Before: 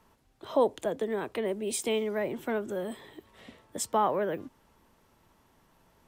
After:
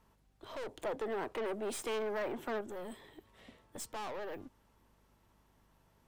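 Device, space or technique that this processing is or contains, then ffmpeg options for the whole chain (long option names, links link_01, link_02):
valve amplifier with mains hum: -filter_complex "[0:a]aeval=exprs='(tanh(56.2*val(0)+0.5)-tanh(0.5))/56.2':channel_layout=same,aeval=exprs='val(0)+0.000447*(sin(2*PI*50*n/s)+sin(2*PI*2*50*n/s)/2+sin(2*PI*3*50*n/s)/3+sin(2*PI*4*50*n/s)/4+sin(2*PI*5*50*n/s)/5)':channel_layout=same,asettb=1/sr,asplit=3[link_01][link_02][link_03];[link_01]atrim=end=0.784[link_04];[link_02]atrim=start=0.78:end=2.61,asetpts=PTS-STARTPTS,afade=type=in:duration=0.004:curve=qsin,afade=type=out:start_time=1.826:duration=0.004:curve=qsin,equalizer=frequency=830:width=0.34:gain=7.5[link_05];[link_03]atrim=start=2.606[link_06];[link_04][link_05]acrossfade=duration=0.004:curve1=hsin:curve2=qsin[link_07];[link_07][link_06]acrossfade=duration=0.004:curve1=qsin:curve2=hsin,volume=-4.5dB"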